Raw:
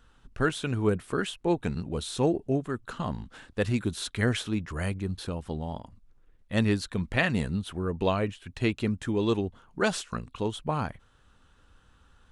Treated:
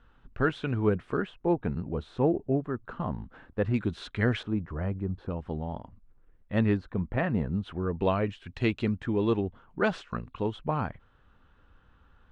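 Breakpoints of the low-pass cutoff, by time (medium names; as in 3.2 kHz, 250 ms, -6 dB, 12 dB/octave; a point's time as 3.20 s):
2.5 kHz
from 1.17 s 1.5 kHz
from 3.74 s 2.7 kHz
from 4.43 s 1.1 kHz
from 5.30 s 2 kHz
from 6.77 s 1.2 kHz
from 7.62 s 2.5 kHz
from 8.27 s 4.1 kHz
from 8.98 s 2.4 kHz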